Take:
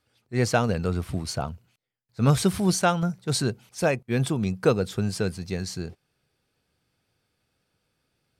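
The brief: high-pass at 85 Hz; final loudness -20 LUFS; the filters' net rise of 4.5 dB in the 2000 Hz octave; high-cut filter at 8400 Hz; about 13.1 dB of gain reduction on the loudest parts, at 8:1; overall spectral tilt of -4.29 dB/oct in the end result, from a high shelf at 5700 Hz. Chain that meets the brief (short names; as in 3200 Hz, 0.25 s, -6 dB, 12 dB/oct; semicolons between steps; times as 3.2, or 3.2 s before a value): HPF 85 Hz; LPF 8400 Hz; bell 2000 Hz +5.5 dB; high shelf 5700 Hz +8.5 dB; compressor 8:1, threshold -29 dBFS; gain +14 dB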